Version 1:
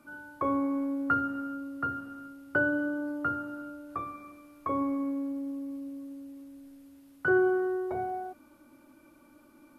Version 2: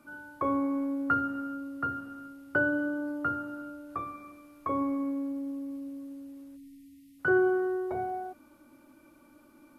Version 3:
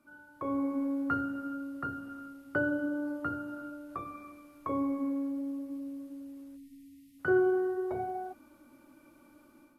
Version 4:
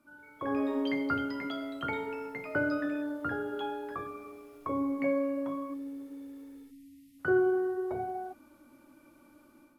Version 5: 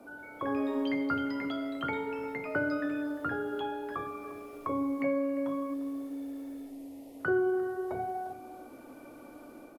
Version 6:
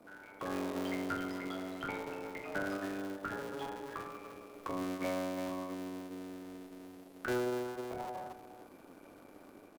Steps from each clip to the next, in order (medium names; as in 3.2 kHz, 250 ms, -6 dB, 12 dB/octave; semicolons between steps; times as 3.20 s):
spectral selection erased 6.56–7.19 s, 310–1800 Hz
dynamic bell 1.4 kHz, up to -5 dB, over -40 dBFS, Q 0.86; level rider gain up to 8.5 dB; flange 0.47 Hz, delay 2.8 ms, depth 9.2 ms, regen -74%; trim -5 dB
ever faster or slower copies 182 ms, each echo +7 st, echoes 3, each echo -6 dB
band noise 240–720 Hz -63 dBFS; echo from a far wall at 60 m, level -16 dB; three bands compressed up and down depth 40%
cycle switcher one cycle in 3, muted; trim -4.5 dB